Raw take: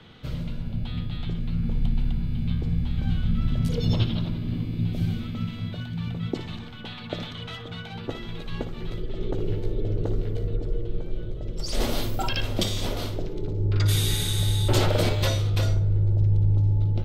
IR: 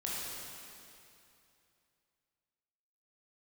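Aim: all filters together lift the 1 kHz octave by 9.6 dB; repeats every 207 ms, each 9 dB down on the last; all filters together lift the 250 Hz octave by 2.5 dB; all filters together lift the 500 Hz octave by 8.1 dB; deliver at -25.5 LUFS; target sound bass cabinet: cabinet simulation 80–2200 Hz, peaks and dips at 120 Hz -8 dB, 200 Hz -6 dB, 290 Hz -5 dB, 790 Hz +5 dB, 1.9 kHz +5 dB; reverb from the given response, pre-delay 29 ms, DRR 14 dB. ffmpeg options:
-filter_complex "[0:a]equalizer=f=250:t=o:g=6.5,equalizer=f=500:t=o:g=7,equalizer=f=1000:t=o:g=5.5,aecho=1:1:207|414|621|828:0.355|0.124|0.0435|0.0152,asplit=2[s0][s1];[1:a]atrim=start_sample=2205,adelay=29[s2];[s1][s2]afir=irnorm=-1:irlink=0,volume=0.133[s3];[s0][s3]amix=inputs=2:normalize=0,highpass=f=80:w=0.5412,highpass=f=80:w=1.3066,equalizer=f=120:t=q:w=4:g=-8,equalizer=f=200:t=q:w=4:g=-6,equalizer=f=290:t=q:w=4:g=-5,equalizer=f=790:t=q:w=4:g=5,equalizer=f=1900:t=q:w=4:g=5,lowpass=f=2200:w=0.5412,lowpass=f=2200:w=1.3066"

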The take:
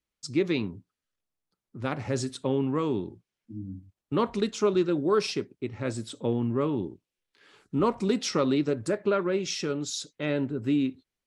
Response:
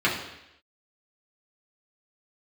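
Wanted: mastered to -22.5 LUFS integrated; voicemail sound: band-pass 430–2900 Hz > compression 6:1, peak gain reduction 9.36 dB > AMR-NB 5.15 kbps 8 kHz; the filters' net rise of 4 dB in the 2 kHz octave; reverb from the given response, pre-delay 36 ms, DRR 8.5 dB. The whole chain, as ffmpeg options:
-filter_complex "[0:a]equalizer=f=2000:t=o:g=6.5,asplit=2[s0][s1];[1:a]atrim=start_sample=2205,adelay=36[s2];[s1][s2]afir=irnorm=-1:irlink=0,volume=0.0596[s3];[s0][s3]amix=inputs=2:normalize=0,highpass=430,lowpass=2900,acompressor=threshold=0.0316:ratio=6,volume=5.96" -ar 8000 -c:a libopencore_amrnb -b:a 5150

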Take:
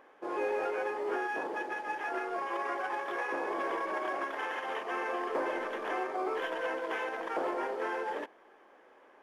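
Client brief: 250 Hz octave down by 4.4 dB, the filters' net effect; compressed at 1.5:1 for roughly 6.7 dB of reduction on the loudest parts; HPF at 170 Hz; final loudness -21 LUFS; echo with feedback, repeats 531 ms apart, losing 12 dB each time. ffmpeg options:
-af "highpass=170,equalizer=f=250:t=o:g=-7.5,acompressor=threshold=0.00316:ratio=1.5,aecho=1:1:531|1062|1593:0.251|0.0628|0.0157,volume=10.6"

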